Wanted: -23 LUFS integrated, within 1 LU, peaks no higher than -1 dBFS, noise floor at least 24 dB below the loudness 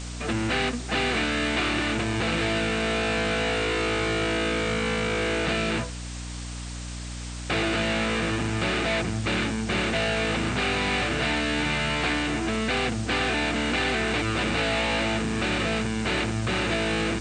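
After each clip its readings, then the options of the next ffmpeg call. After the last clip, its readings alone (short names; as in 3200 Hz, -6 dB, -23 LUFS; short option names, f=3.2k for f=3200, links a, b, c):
hum 60 Hz; harmonics up to 300 Hz; hum level -33 dBFS; noise floor -35 dBFS; noise floor target -49 dBFS; loudness -25.0 LUFS; peak -13.0 dBFS; loudness target -23.0 LUFS
-> -af "bandreject=f=60:t=h:w=6,bandreject=f=120:t=h:w=6,bandreject=f=180:t=h:w=6,bandreject=f=240:t=h:w=6,bandreject=f=300:t=h:w=6"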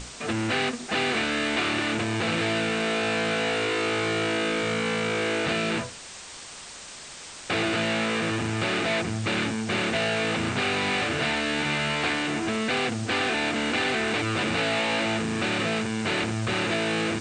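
hum none; noise floor -42 dBFS; noise floor target -50 dBFS
-> -af "afftdn=nr=8:nf=-42"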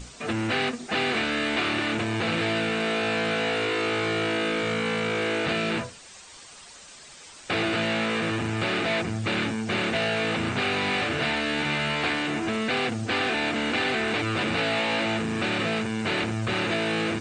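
noise floor -47 dBFS; noise floor target -50 dBFS
-> -af "afftdn=nr=6:nf=-47"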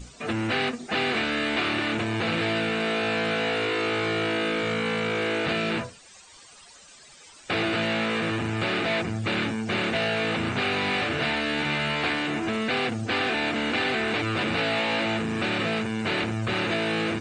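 noise floor -50 dBFS; loudness -25.5 LUFS; peak -14.0 dBFS; loudness target -23.0 LUFS
-> -af "volume=2.5dB"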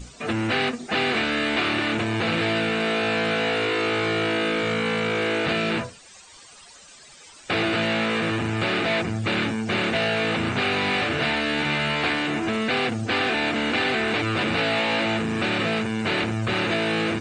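loudness -23.0 LUFS; peak -11.5 dBFS; noise floor -48 dBFS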